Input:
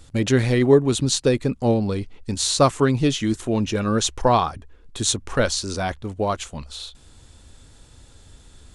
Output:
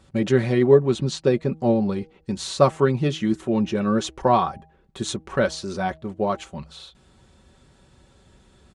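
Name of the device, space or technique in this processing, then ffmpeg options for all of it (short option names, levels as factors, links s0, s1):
through cloth: -filter_complex "[0:a]highpass=72,highshelf=f=3700:g=-14,bandreject=f=159.1:t=h:w=4,bandreject=f=318.2:t=h:w=4,bandreject=f=477.3:t=h:w=4,bandreject=f=636.4:t=h:w=4,bandreject=f=795.5:t=h:w=4,asettb=1/sr,asplit=3[s0][s1][s2];[s0]atrim=end=0.864[s3];[s1]atrim=start=0.86:end=1.51,asetpts=PTS-STARTPTS,afade=t=in:d=0.004:c=qsin,afade=t=out:st=0.646:d=0.004:c=qsin,lowpass=7800[s4];[s2]atrim=start=1.506[s5];[s3][s4]acrossfade=d=0.004:c1=hsin:c2=qsin[s6];[s6][s5]acrossfade=d=0.004:c1=qsin:c2=hsin,aecho=1:1:5.3:0.55,volume=0.891"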